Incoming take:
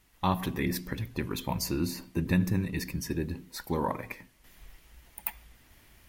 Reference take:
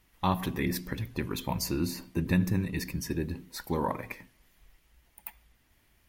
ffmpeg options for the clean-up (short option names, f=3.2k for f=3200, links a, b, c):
-af "agate=range=-21dB:threshold=-51dB,asetnsamples=n=441:p=0,asendcmd='4.44 volume volume -8.5dB',volume=0dB"